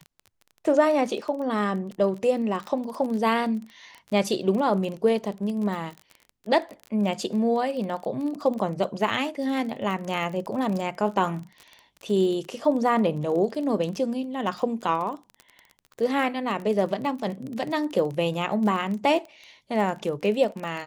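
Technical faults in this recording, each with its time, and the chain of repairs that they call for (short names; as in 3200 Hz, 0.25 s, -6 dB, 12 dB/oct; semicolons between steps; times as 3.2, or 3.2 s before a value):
crackle 26/s -31 dBFS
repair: de-click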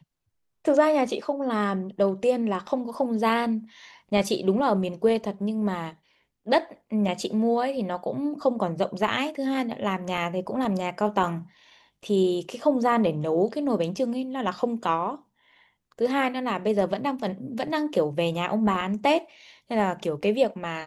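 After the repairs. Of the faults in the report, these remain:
none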